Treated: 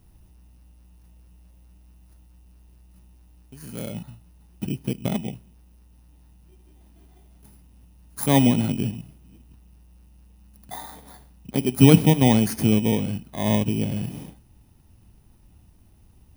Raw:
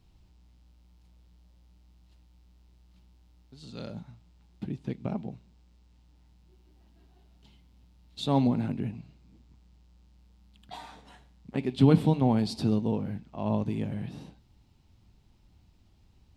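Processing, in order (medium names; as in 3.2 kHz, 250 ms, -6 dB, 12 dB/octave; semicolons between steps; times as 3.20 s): bit-reversed sample order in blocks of 16 samples; trim +7 dB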